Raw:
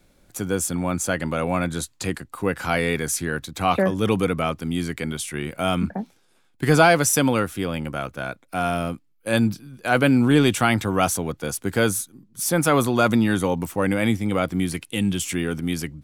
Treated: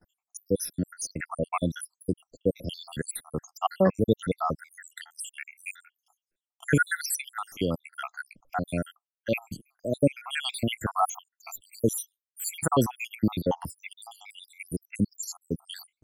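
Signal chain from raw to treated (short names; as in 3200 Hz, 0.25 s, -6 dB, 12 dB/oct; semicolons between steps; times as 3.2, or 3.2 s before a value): random spectral dropouts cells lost 83%; gate with hold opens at -52 dBFS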